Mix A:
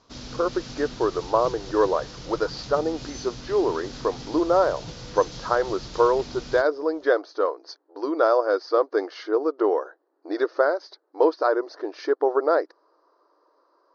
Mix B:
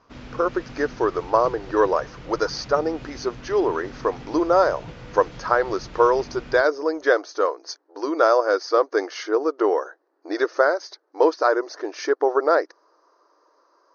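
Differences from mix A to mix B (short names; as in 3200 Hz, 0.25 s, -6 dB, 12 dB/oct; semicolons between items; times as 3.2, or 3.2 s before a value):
speech: remove air absorption 480 m; master: add resonant high shelf 3300 Hz -11.5 dB, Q 1.5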